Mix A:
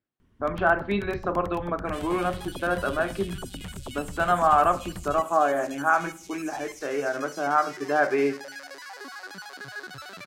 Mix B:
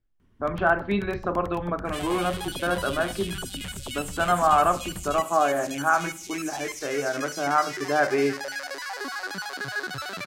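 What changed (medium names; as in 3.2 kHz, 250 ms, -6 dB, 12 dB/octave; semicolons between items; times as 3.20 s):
speech: remove high-pass 170 Hz; second sound +7.5 dB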